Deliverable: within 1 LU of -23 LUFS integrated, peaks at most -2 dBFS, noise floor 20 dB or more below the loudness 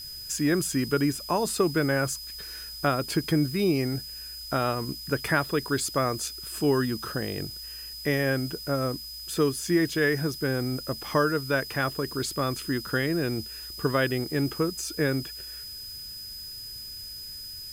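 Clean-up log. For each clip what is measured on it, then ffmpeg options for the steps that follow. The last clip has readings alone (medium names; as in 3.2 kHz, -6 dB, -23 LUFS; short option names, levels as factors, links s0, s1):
steady tone 5 kHz; tone level -38 dBFS; noise floor -40 dBFS; noise floor target -48 dBFS; loudness -28.0 LUFS; peak level -10.5 dBFS; loudness target -23.0 LUFS
-> -af "bandreject=f=5000:w=30"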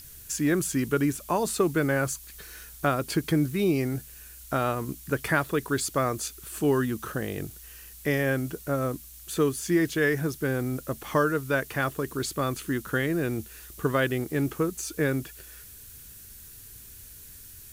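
steady tone not found; noise floor -47 dBFS; noise floor target -48 dBFS
-> -af "afftdn=nr=6:nf=-47"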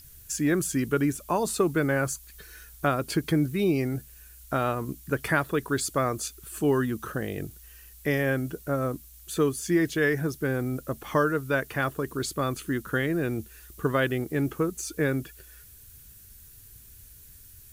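noise floor -50 dBFS; loudness -28.0 LUFS; peak level -10.5 dBFS; loudness target -23.0 LUFS
-> -af "volume=1.78"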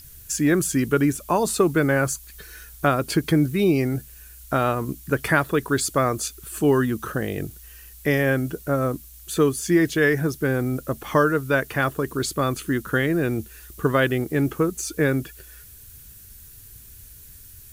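loudness -23.0 LUFS; peak level -5.5 dBFS; noise floor -45 dBFS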